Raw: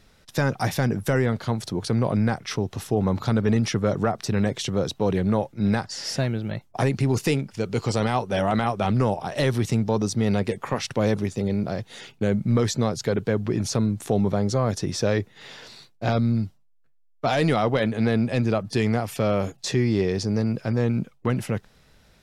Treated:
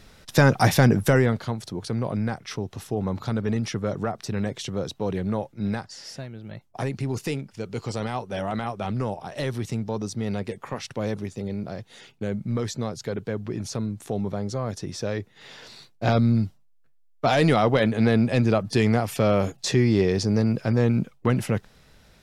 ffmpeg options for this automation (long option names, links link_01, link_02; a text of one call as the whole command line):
ffmpeg -i in.wav -af "volume=22dB,afade=type=out:start_time=0.89:duration=0.66:silence=0.298538,afade=type=out:start_time=5.62:duration=0.68:silence=0.334965,afade=type=in:start_time=6.3:duration=0.4:silence=0.398107,afade=type=in:start_time=15.19:duration=0.92:silence=0.398107" out.wav